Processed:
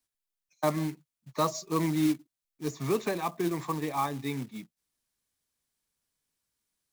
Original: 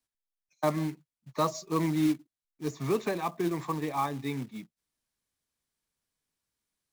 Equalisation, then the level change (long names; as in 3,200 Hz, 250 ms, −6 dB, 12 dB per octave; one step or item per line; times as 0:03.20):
high-shelf EQ 4,700 Hz +4.5 dB
0.0 dB